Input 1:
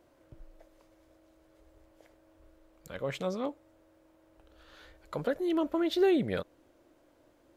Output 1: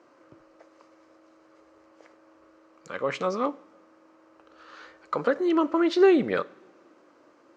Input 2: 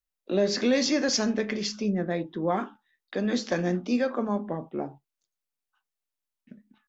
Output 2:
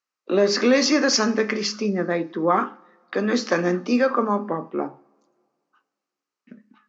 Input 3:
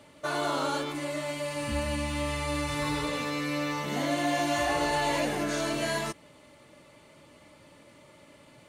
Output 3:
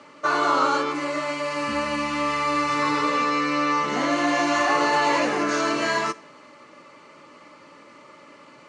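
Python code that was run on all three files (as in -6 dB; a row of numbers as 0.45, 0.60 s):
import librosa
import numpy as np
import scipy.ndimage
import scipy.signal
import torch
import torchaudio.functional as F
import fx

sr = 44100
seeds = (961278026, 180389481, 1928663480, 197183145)

y = fx.cabinet(x, sr, low_hz=250.0, low_slope=12, high_hz=6500.0, hz=(660.0, 1200.0, 3500.0), db=(-5, 9, -8))
y = fx.rev_double_slope(y, sr, seeds[0], early_s=0.48, late_s=2.1, knee_db=-18, drr_db=16.0)
y = y * librosa.db_to_amplitude(7.5)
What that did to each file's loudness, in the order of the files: +6.5, +5.5, +7.5 LU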